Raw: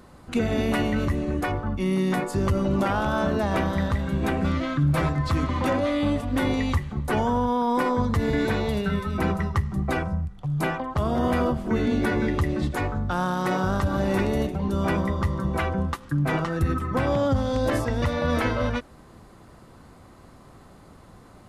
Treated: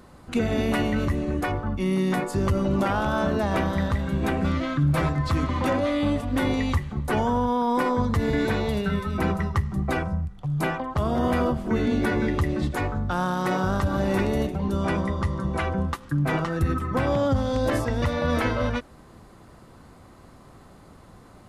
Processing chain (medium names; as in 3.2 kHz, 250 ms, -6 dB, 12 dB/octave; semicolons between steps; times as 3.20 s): 14.77–15.67 s: elliptic low-pass 11 kHz, stop band 40 dB